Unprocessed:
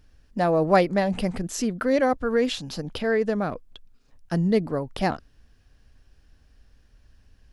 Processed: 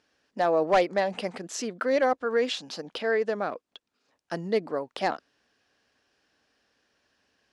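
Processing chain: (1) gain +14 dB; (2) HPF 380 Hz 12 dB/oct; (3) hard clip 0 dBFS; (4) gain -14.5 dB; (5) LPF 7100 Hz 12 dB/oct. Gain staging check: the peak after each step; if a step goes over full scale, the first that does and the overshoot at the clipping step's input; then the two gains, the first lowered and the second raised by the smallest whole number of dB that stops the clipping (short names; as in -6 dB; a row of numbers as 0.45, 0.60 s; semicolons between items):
+7.5, +7.5, 0.0, -14.5, -14.0 dBFS; step 1, 7.5 dB; step 1 +6 dB, step 4 -6.5 dB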